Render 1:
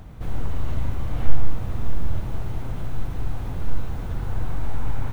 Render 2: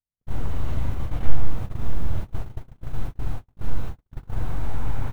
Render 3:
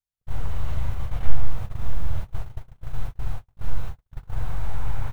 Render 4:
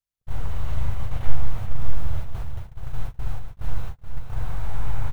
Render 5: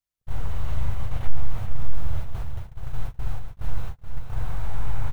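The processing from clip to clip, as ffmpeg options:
-af "agate=range=0.00112:threshold=0.0891:ratio=16:detection=peak"
-af "equalizer=f=280:t=o:w=1.1:g=-11.5"
-af "aecho=1:1:426:0.422"
-af "asoftclip=type=tanh:threshold=0.631"

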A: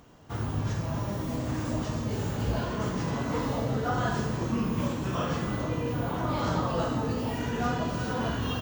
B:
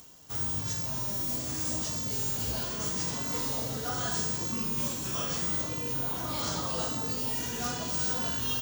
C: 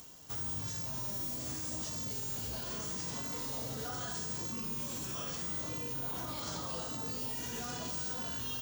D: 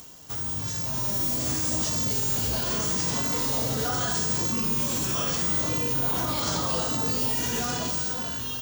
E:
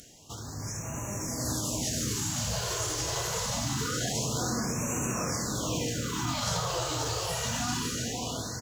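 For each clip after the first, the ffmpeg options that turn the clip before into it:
-af "highshelf=f=2400:g=8,areverse,acompressor=mode=upward:threshold=0.00891:ratio=2.5,areverse,bass=f=250:g=-1,treble=f=4000:g=15,volume=0.422"
-af "alimiter=level_in=2:limit=0.0631:level=0:latency=1:release=101,volume=0.501"
-af "dynaudnorm=f=270:g=7:m=2,volume=2.11"
-filter_complex "[0:a]aresample=32000,aresample=44100,asplit=2[s0][s1];[s1]aecho=0:1:537|1074|1611|2148|2685|3222:0.562|0.27|0.13|0.0622|0.0299|0.0143[s2];[s0][s2]amix=inputs=2:normalize=0,afftfilt=real='re*(1-between(b*sr/1024,210*pow(4100/210,0.5+0.5*sin(2*PI*0.25*pts/sr))/1.41,210*pow(4100/210,0.5+0.5*sin(2*PI*0.25*pts/sr))*1.41))':imag='im*(1-between(b*sr/1024,210*pow(4100/210,0.5+0.5*sin(2*PI*0.25*pts/sr))/1.41,210*pow(4100/210,0.5+0.5*sin(2*PI*0.25*pts/sr))*1.41))':win_size=1024:overlap=0.75,volume=0.75"

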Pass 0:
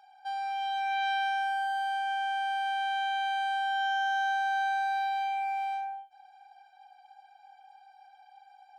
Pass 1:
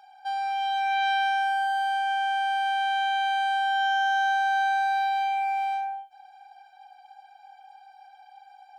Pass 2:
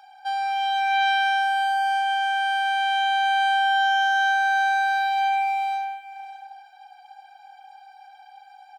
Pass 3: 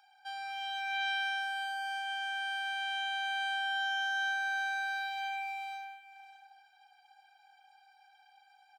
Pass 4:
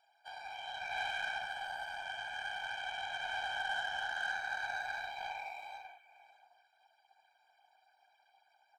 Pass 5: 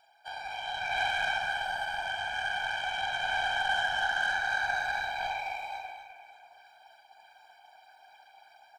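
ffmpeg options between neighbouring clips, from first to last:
-af "bandreject=f=1900:w=12,volume=1.78"
-af "highpass=690,aecho=1:1:599:0.168,volume=1.78"
-af "highpass=1200,volume=0.376"
-filter_complex "[0:a]afftfilt=real='hypot(re,im)*cos(2*PI*random(0))':imag='hypot(re,im)*sin(2*PI*random(1))':win_size=512:overlap=0.75,acrossover=split=3500[s0][s1];[s1]acompressor=threshold=0.00141:ratio=4:attack=1:release=60[s2];[s0][s2]amix=inputs=2:normalize=0,aeval=exprs='0.0398*(cos(1*acos(clip(val(0)/0.0398,-1,1)))-cos(1*PI/2))+0.00224*(cos(7*acos(clip(val(0)/0.0398,-1,1)))-cos(7*PI/2))':c=same,volume=1.33"
-af "areverse,acompressor=mode=upward:threshold=0.00141:ratio=2.5,areverse,lowshelf=f=200:g=5.5,aecho=1:1:43.73|253.6:0.355|0.398,volume=2.24"

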